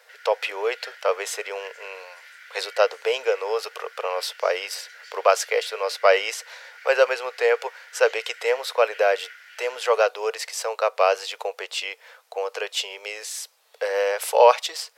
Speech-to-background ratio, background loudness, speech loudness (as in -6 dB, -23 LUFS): 20.0 dB, -44.0 LUFS, -24.0 LUFS